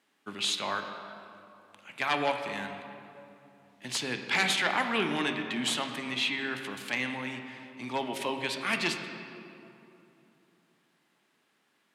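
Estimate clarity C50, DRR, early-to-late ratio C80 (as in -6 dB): 6.5 dB, 5.0 dB, 7.5 dB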